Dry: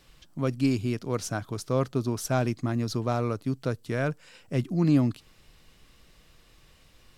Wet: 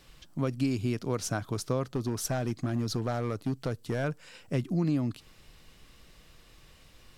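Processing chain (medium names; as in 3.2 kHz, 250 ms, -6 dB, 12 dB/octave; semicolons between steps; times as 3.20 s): compression 6:1, threshold -26 dBFS, peak gain reduction 9.5 dB; 1.95–4.04 s: hard clipper -25.5 dBFS, distortion -16 dB; trim +1.5 dB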